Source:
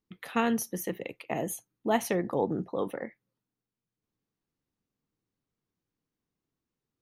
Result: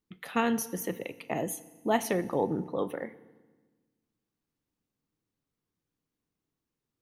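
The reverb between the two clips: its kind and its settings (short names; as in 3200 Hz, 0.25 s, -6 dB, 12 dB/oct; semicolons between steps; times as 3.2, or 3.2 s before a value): FDN reverb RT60 1.3 s, low-frequency decay 1.4×, high-frequency decay 0.95×, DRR 15 dB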